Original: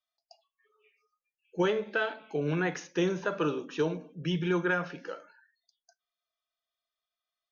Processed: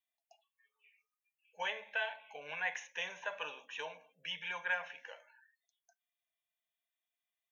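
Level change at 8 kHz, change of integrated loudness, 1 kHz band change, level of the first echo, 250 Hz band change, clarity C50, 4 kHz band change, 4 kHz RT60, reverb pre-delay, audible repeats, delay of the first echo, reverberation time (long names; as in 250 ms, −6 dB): can't be measured, −9.0 dB, −7.0 dB, no echo audible, −34.0 dB, no reverb audible, −2.0 dB, no reverb audible, no reverb audible, no echo audible, no echo audible, no reverb audible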